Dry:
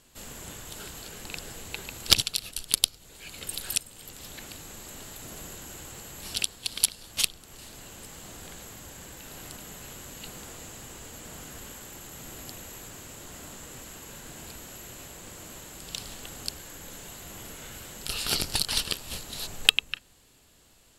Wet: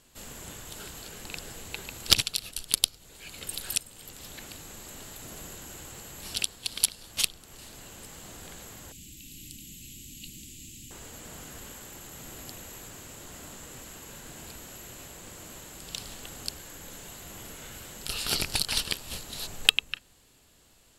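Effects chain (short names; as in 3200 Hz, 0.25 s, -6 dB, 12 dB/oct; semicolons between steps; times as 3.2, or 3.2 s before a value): rattling part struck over -32 dBFS, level -15 dBFS; 8.92–10.91 elliptic band-stop 300–2600 Hz, stop band 60 dB; gain -1 dB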